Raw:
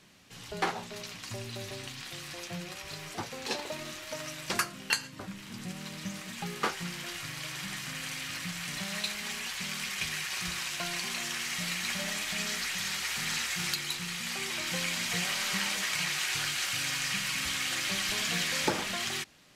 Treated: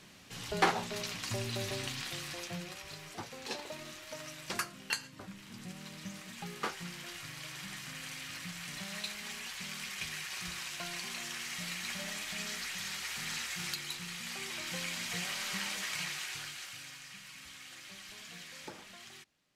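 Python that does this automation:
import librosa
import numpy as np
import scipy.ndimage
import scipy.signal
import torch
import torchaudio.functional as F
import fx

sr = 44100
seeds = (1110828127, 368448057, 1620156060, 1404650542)

y = fx.gain(x, sr, db=fx.line((1.95, 3.0), (3.02, -6.0), (16.01, -6.0), (17.06, -18.0)))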